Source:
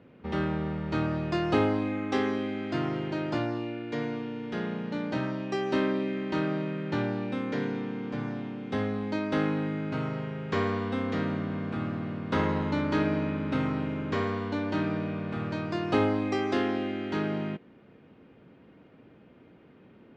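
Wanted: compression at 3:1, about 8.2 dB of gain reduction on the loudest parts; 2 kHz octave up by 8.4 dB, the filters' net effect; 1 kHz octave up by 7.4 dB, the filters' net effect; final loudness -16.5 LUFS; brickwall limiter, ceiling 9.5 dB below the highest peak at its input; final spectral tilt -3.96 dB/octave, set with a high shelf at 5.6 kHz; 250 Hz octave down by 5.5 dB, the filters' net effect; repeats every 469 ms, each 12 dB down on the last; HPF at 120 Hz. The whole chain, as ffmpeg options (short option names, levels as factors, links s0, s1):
-af "highpass=120,equalizer=f=250:t=o:g=-7.5,equalizer=f=1000:t=o:g=7.5,equalizer=f=2000:t=o:g=9,highshelf=f=5600:g=-7.5,acompressor=threshold=0.0316:ratio=3,alimiter=level_in=1.19:limit=0.0631:level=0:latency=1,volume=0.841,aecho=1:1:469|938|1407:0.251|0.0628|0.0157,volume=7.94"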